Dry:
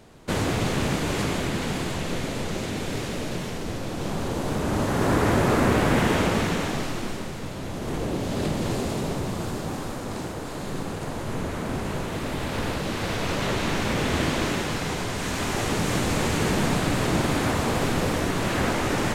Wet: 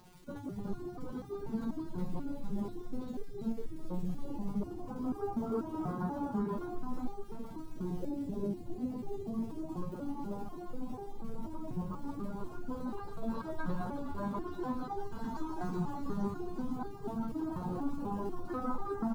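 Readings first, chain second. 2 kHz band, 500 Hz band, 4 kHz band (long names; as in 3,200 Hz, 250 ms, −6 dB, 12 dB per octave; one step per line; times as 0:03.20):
−25.5 dB, −14.0 dB, below −30 dB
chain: expanding power law on the bin magnitudes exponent 3
flat-topped bell 1,100 Hz +15 dB 1.2 octaves
downward compressor, threshold −27 dBFS, peak gain reduction 9.5 dB
on a send: single-tap delay 829 ms −9.5 dB
on the sum: reverb reduction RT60 0.58 s
high shelf with overshoot 3,300 Hz +10 dB, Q 3
surface crackle 140 per second −41 dBFS
single-tap delay 366 ms −4 dB
step-sequenced resonator 4.1 Hz 180–400 Hz
level +8 dB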